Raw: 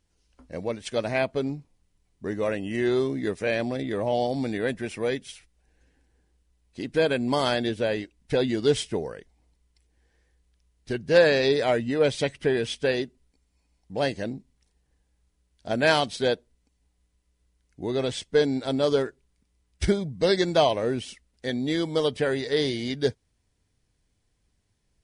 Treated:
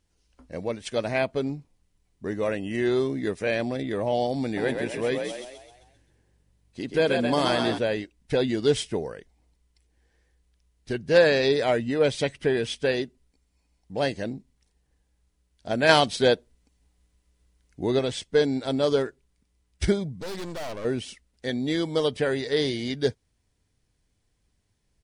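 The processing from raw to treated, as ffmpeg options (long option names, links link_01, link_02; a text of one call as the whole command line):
ffmpeg -i in.wav -filter_complex "[0:a]asplit=3[link_01][link_02][link_03];[link_01]afade=type=out:start_time=4.56:duration=0.02[link_04];[link_02]asplit=7[link_05][link_06][link_07][link_08][link_09][link_10][link_11];[link_06]adelay=131,afreqshift=47,volume=-5dB[link_12];[link_07]adelay=262,afreqshift=94,volume=-11.6dB[link_13];[link_08]adelay=393,afreqshift=141,volume=-18.1dB[link_14];[link_09]adelay=524,afreqshift=188,volume=-24.7dB[link_15];[link_10]adelay=655,afreqshift=235,volume=-31.2dB[link_16];[link_11]adelay=786,afreqshift=282,volume=-37.8dB[link_17];[link_05][link_12][link_13][link_14][link_15][link_16][link_17]amix=inputs=7:normalize=0,afade=type=in:start_time=4.56:duration=0.02,afade=type=out:start_time=7.77:duration=0.02[link_18];[link_03]afade=type=in:start_time=7.77:duration=0.02[link_19];[link_04][link_18][link_19]amix=inputs=3:normalize=0,asettb=1/sr,asplit=3[link_20][link_21][link_22];[link_20]atrim=end=20.204[link_23];[link_21]atrim=start=20.2:end=20.85,asetpts=PTS-STARTPTS,afade=type=in:duration=0.004:curve=qsin,afade=type=out:start_time=0.646:duration=0.004:curve=qsin,aeval=exprs='(tanh(44.7*val(0)+0.75)-tanh(0.75))/44.7':channel_layout=same[link_24];[link_22]atrim=start=20.846[link_25];[link_23][link_24]acrossfade=duration=0.004:curve1=hsin:curve2=qsin[link_26];[link_26][link_25]acrossfade=duration=0.004:curve1=qsin:curve2=hsin,asplit=3[link_27][link_28][link_29];[link_27]atrim=end=15.892[link_30];[link_28]atrim=start=15.888:end=17.992,asetpts=PTS-STARTPTS,volume=4dB[link_31];[link_29]atrim=start=17.988[link_32];[link_30][link_31]acrossfade=duration=0.004:curve1=hsin:curve2=hsin[link_33];[link_33][link_32]acrossfade=duration=0.004:curve1=hsin:curve2=hsin" out.wav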